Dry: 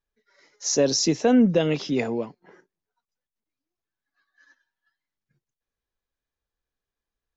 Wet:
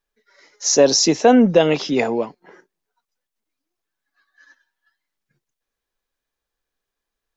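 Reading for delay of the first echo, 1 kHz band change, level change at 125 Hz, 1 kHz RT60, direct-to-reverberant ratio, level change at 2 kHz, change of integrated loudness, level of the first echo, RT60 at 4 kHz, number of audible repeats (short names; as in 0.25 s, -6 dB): none, +11.5 dB, +1.5 dB, none, none, +7.5 dB, +6.0 dB, none, none, none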